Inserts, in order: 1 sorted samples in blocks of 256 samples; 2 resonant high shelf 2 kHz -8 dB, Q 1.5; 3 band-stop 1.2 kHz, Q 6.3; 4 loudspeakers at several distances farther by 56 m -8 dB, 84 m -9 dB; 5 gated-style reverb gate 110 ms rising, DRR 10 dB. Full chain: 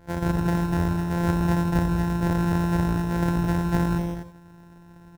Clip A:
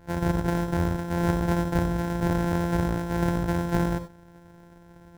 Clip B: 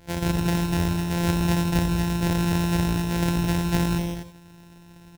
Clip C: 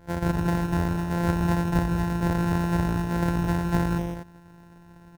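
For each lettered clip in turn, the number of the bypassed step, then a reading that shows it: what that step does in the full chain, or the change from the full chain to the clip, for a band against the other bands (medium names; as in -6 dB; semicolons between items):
4, echo-to-direct -4.0 dB to -10.0 dB; 2, 4 kHz band +9.5 dB; 5, echo-to-direct -4.0 dB to -5.5 dB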